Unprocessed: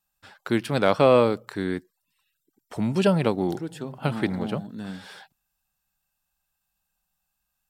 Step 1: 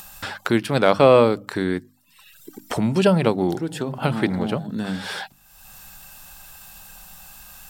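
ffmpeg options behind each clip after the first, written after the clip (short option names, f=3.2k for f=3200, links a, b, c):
-af "bandreject=f=50:t=h:w=6,bandreject=f=100:t=h:w=6,bandreject=f=150:t=h:w=6,bandreject=f=200:t=h:w=6,bandreject=f=250:t=h:w=6,bandreject=f=300:t=h:w=6,acompressor=mode=upward:threshold=-22dB:ratio=2.5,volume=4dB"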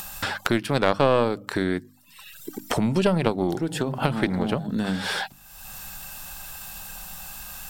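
-af "aeval=exprs='0.891*(cos(1*acos(clip(val(0)/0.891,-1,1)))-cos(1*PI/2))+0.316*(cos(2*acos(clip(val(0)/0.891,-1,1)))-cos(2*PI/2))':c=same,acompressor=threshold=-30dB:ratio=2,volume=5dB"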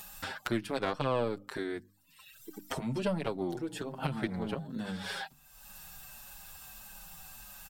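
-filter_complex "[0:a]asplit=2[a][b];[b]adelay=6.6,afreqshift=-1.6[c];[a][c]amix=inputs=2:normalize=1,volume=-8dB"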